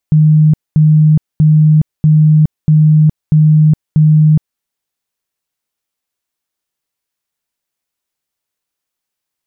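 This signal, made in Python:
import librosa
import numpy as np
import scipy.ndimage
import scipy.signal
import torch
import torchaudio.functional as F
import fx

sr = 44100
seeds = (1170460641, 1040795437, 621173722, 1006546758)

y = fx.tone_burst(sr, hz=154.0, cycles=64, every_s=0.64, bursts=7, level_db=-4.0)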